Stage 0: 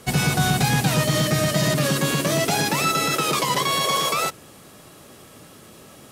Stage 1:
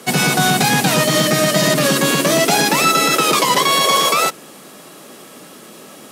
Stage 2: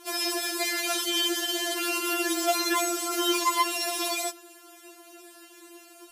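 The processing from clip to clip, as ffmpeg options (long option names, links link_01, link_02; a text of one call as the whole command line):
ffmpeg -i in.wav -af "highpass=frequency=180:width=0.5412,highpass=frequency=180:width=1.3066,volume=7.5dB" out.wav
ffmpeg -i in.wav -af "afftfilt=real='re*4*eq(mod(b,16),0)':imag='im*4*eq(mod(b,16),0)':win_size=2048:overlap=0.75,volume=-7.5dB" out.wav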